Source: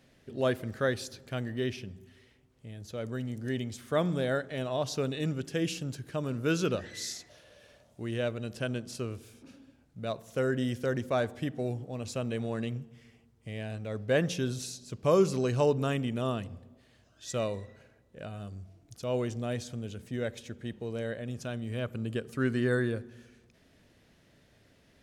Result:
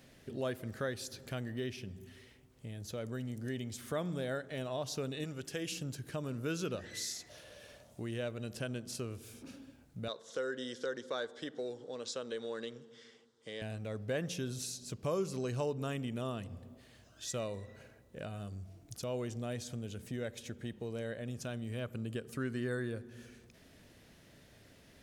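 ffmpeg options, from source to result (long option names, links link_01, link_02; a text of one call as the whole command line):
ffmpeg -i in.wav -filter_complex "[0:a]asettb=1/sr,asplit=3[link_01][link_02][link_03];[link_01]atrim=end=5.244[link_04];[link_02]atrim=start=5.24:end=5.72,asetpts=PTS-STARTPTS,afade=type=in:duration=0.004:curve=qsin,afade=type=out:start_time=0.476:duration=0.004:curve=qsin,equalizer=frequency=190:width_type=o:width=1.9:gain=-7.5[link_05];[link_03]atrim=start=5.716[link_06];[link_04][link_05]acrossfade=duration=0.004:curve1=hsin:curve2=qsin[link_07];[link_07][link_06]acrossfade=duration=0.004:curve1=qsin:curve2=hsin,asettb=1/sr,asplit=3[link_08][link_09][link_10];[link_08]atrim=end=10.084[link_11];[link_09]atrim=start=10.08:end=13.62,asetpts=PTS-STARTPTS,afade=type=in:duration=0.004:curve=qsin,afade=type=out:start_time=3.536:duration=0.004:curve=qsin,highpass=380,equalizer=frequency=480:width_type=q:width=4:gain=6,equalizer=frequency=690:width_type=q:width=4:gain=-9,equalizer=frequency=1500:width_type=q:width=4:gain=4,equalizer=frequency=2500:width_type=q:width=4:gain=-10,equalizer=frequency=3600:width_type=q:width=4:gain=9,equalizer=frequency=5100:width_type=q:width=4:gain=3,lowpass=frequency=7700:width=0.5412,lowpass=frequency=7700:width=1.3066[link_12];[link_10]atrim=start=13.616[link_13];[link_11][link_12]acrossfade=duration=0.004:curve1=hsin:curve2=qsin[link_14];[link_14][link_13]acrossfade=duration=0.004:curve1=qsin:curve2=hsin,highshelf=frequency=7900:gain=7,acompressor=threshold=-45dB:ratio=2,volume=2.5dB" out.wav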